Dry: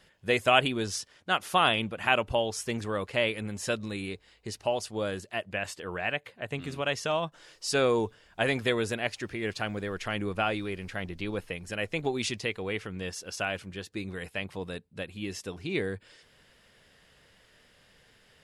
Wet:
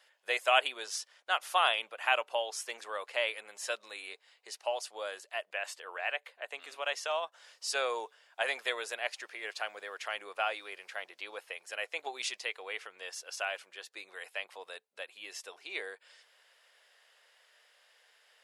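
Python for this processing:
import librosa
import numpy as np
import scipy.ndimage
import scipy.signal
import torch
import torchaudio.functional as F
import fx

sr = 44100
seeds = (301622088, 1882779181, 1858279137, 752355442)

y = scipy.signal.sosfilt(scipy.signal.butter(4, 580.0, 'highpass', fs=sr, output='sos'), x)
y = y * 10.0 ** (-3.0 / 20.0)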